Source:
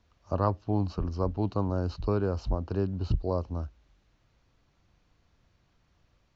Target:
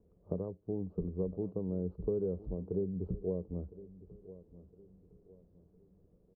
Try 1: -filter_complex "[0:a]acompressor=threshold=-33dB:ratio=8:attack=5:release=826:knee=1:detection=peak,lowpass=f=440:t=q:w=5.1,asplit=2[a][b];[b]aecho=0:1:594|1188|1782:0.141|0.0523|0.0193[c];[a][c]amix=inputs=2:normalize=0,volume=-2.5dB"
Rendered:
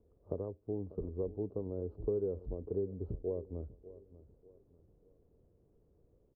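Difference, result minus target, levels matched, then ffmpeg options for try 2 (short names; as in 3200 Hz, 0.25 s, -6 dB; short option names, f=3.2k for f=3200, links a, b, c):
echo 0.416 s early; 250 Hz band -3.0 dB
-filter_complex "[0:a]acompressor=threshold=-33dB:ratio=8:attack=5:release=826:knee=1:detection=peak,lowpass=f=440:t=q:w=5.1,equalizer=f=180:w=4.8:g=13.5,asplit=2[a][b];[b]aecho=0:1:1010|2020|3030:0.141|0.0523|0.0193[c];[a][c]amix=inputs=2:normalize=0,volume=-2.5dB"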